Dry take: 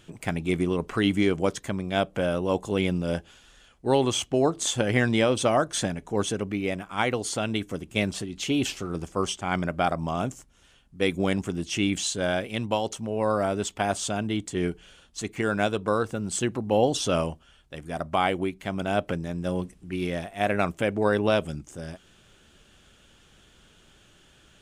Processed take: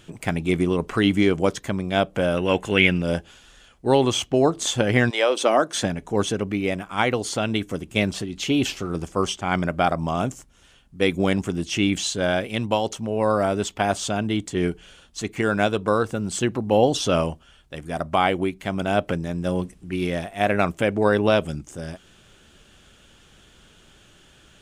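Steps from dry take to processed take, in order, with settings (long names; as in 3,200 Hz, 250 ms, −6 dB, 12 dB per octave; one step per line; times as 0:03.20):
0:02.37–0:03.02: flat-topped bell 2,100 Hz +12.5 dB 1.3 octaves
0:05.09–0:05.82: high-pass filter 570 Hz → 140 Hz 24 dB per octave
dynamic equaliser 8,800 Hz, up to −5 dB, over −46 dBFS, Q 1.4
level +4 dB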